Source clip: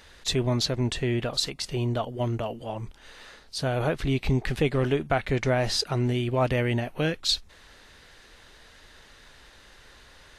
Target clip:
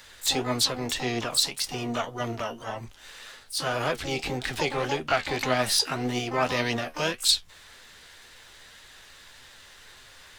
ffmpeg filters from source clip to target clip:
-filter_complex "[0:a]asplit=3[a][b][c];[b]asetrate=52444,aresample=44100,atempo=0.840896,volume=-15dB[d];[c]asetrate=88200,aresample=44100,atempo=0.5,volume=-7dB[e];[a][d][e]amix=inputs=3:normalize=0,flanger=delay=7.6:depth=5.3:regen=54:speed=1.8:shape=sinusoidal,acrossover=split=210|680|2500[f][g][h][i];[f]asoftclip=type=tanh:threshold=-35.5dB[j];[j][g][h][i]amix=inputs=4:normalize=0,tiltshelf=f=760:g=-4.5,volume=3dB"

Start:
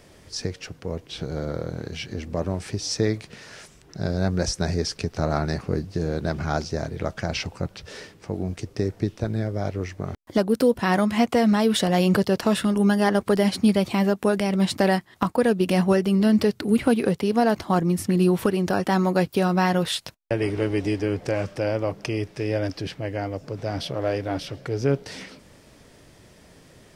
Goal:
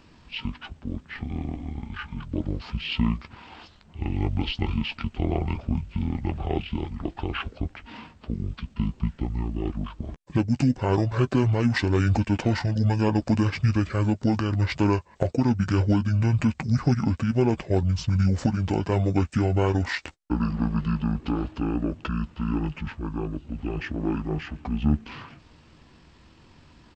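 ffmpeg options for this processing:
-filter_complex "[0:a]asetrate=23361,aresample=44100,atempo=1.88775,asplit=2[a][b];[b]adelay=13,volume=-12dB[c];[a][c]amix=inputs=2:normalize=0,volume=-1.5dB"

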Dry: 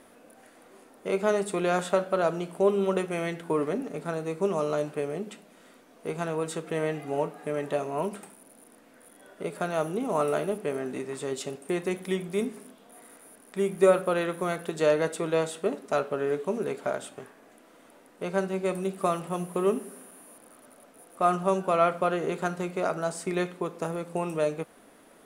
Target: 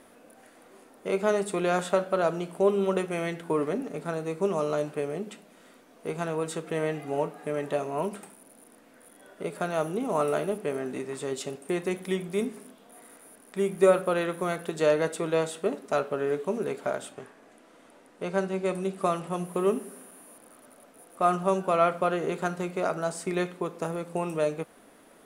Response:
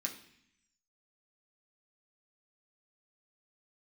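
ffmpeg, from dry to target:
-filter_complex "[0:a]asettb=1/sr,asplit=3[a][b][c];[a]atrim=end=17.124[d];[b]atrim=start=17.12:end=19.45,asetpts=PTS-STARTPTS,afade=t=in:d=0.004:c=qsin,afade=t=out:st=2.326:d=0.004:c=qsin,lowpass=10k[e];[c]atrim=start=19.446[f];[d][e]acrossfade=d=0.004:c1=hsin:c2=qsin[g];[g][f]acrossfade=d=0.004:c1=qsin:c2=hsin"

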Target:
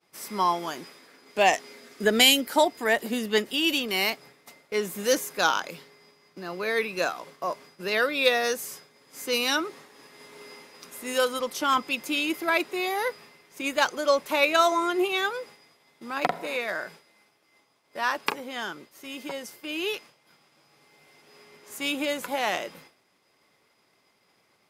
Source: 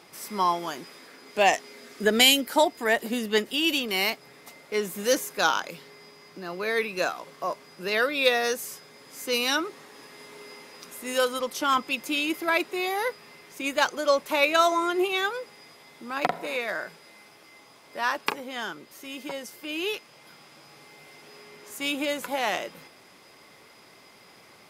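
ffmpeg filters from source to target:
-af "agate=range=-33dB:threshold=-43dB:ratio=3:detection=peak"

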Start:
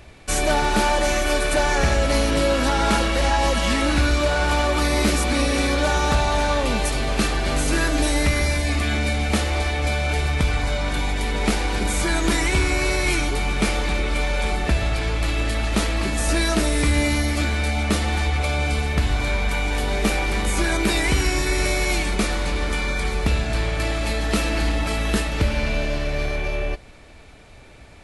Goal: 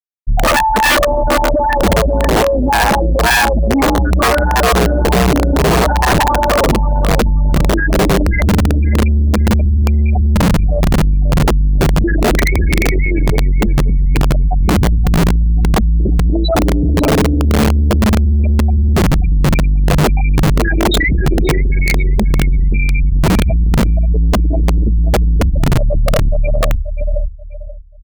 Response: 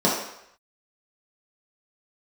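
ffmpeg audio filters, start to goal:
-filter_complex "[0:a]acompressor=threshold=-29dB:ratio=4,afftfilt=real='re*gte(hypot(re,im),0.141)':imag='im*gte(hypot(re,im),0.141)':win_size=1024:overlap=0.75,equalizer=f=440:t=o:w=1.8:g=6.5,aecho=1:1:1.1:0.57,asplit=2[a][b];[b]adelay=533,lowpass=f=2.6k:p=1,volume=-12dB,asplit=2[c][d];[d]adelay=533,lowpass=f=2.6k:p=1,volume=0.25,asplit=2[e][f];[f]adelay=533,lowpass=f=2.6k:p=1,volume=0.25[g];[c][e][g]amix=inputs=3:normalize=0[h];[a][h]amix=inputs=2:normalize=0,tremolo=f=2.1:d=0.48,aeval=exprs='(mod(16.8*val(0)+1,2)-1)/16.8':c=same,acontrast=79,apsyclip=31dB,volume=-9dB"

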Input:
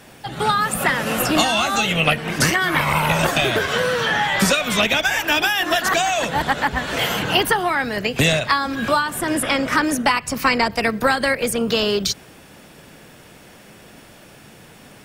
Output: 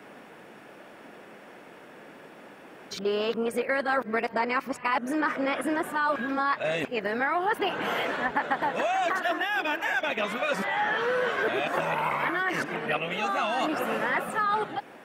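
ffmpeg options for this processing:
-filter_complex "[0:a]areverse,acompressor=threshold=-22dB:ratio=6,acrossover=split=220 2400:gain=0.0708 1 0.158[a][b][c];[a][b][c]amix=inputs=3:normalize=0"

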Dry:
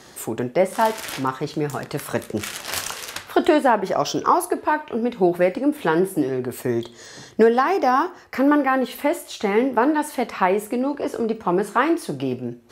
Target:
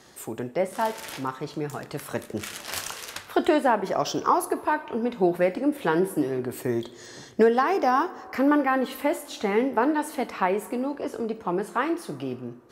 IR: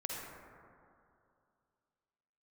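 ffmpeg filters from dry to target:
-filter_complex "[0:a]dynaudnorm=f=430:g=13:m=11.5dB,asplit=2[a][b];[1:a]atrim=start_sample=2205,highshelf=f=11k:g=9.5,adelay=81[c];[b][c]afir=irnorm=-1:irlink=0,volume=-21dB[d];[a][d]amix=inputs=2:normalize=0,volume=-7dB"

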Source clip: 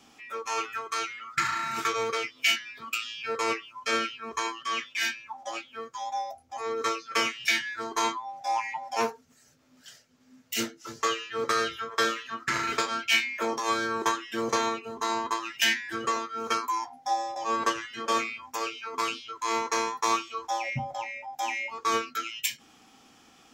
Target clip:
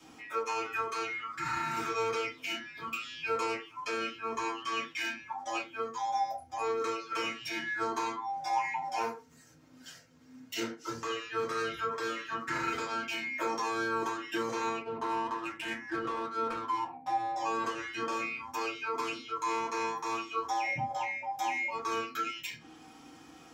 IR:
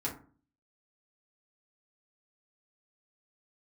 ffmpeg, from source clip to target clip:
-filter_complex "[0:a]acrossover=split=350|950|5700[a][b][c][d];[a]acompressor=threshold=-47dB:ratio=4[e];[b]acompressor=threshold=-40dB:ratio=4[f];[c]acompressor=threshold=-35dB:ratio=4[g];[d]acompressor=threshold=-50dB:ratio=4[h];[e][f][g][h]amix=inputs=4:normalize=0,alimiter=level_in=1.5dB:limit=-24dB:level=0:latency=1:release=96,volume=-1.5dB,asettb=1/sr,asplit=3[i][j][k];[i]atrim=end=14.814[l];[j]atrim=start=14.81:end=17.36,asetpts=PTS-STARTPTS,afade=t=in:d=0.004:c=qsin,afade=t=out:st=2.546:d=0.004:c=qsin,adynamicsmooth=sensitivity=6.5:basefreq=660[m];[k]atrim=start=17.356[n];[l][m]acrossfade=d=0.004:c1=hsin:c2=qsin[o];[o][n]acrossfade=d=0.004:c1=qsin:c2=hsin[p];[1:a]atrim=start_sample=2205,afade=t=out:st=0.17:d=0.01,atrim=end_sample=7938,asetrate=48510,aresample=44100[q];[p][q]afir=irnorm=-1:irlink=0"

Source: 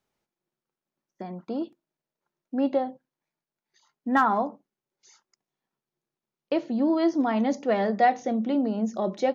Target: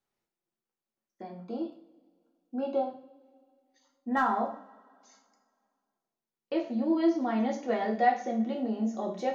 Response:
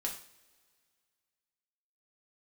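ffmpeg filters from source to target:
-filter_complex "[0:a]asettb=1/sr,asplit=3[a][b][c];[a]atrim=end=1.394[d];[b]atrim=start=1.39:end=2.89,asetpts=PTS-STARTPTS,afade=t=in:d=0.004:c=qsin,afade=t=out:st=1.496:d=0.004:c=qsin,asuperstop=centerf=1900:order=12:qfactor=3.5[e];[c]atrim=start=2.886[f];[d][e]acrossfade=d=0.004:c1=hsin:c2=qsin[g];[g][f]acrossfade=d=0.004:c1=qsin:c2=hsin[h];[1:a]atrim=start_sample=2205[i];[h][i]afir=irnorm=-1:irlink=0,volume=-6.5dB"

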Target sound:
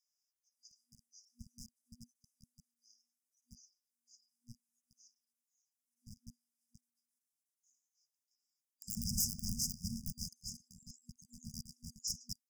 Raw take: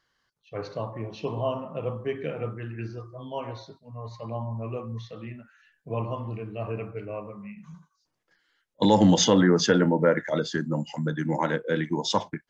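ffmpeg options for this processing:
-filter_complex "[0:a]asplit=2[a][b];[b]aeval=exprs='(mod(2.99*val(0)+1,2)-1)/2.99':c=same,volume=-3.5dB[c];[a][c]amix=inputs=2:normalize=0,equalizer=f=3.5k:t=o:w=1.6:g=-8,bandreject=f=50:t=h:w=6,bandreject=f=100:t=h:w=6,bandreject=f=150:t=h:w=6,bandreject=f=200:t=h:w=6,bandreject=f=250:t=h:w=6,bandreject=f=300:t=h:w=6,bandreject=f=350:t=h:w=6,bandreject=f=400:t=h:w=6,bandreject=f=450:t=h:w=6,acrossover=split=260|2100[d][e][f];[d]adelay=40[g];[e]adelay=150[h];[g][h][f]amix=inputs=3:normalize=0,afreqshift=250,aeval=exprs='0.1*(abs(mod(val(0)/0.1+3,4)-2)-1)':c=same,afftfilt=real='re*(1-between(b*sr/4096,240,4800))':imag='im*(1-between(b*sr/4096,240,4800))':win_size=4096:overlap=0.75,volume=-4dB"

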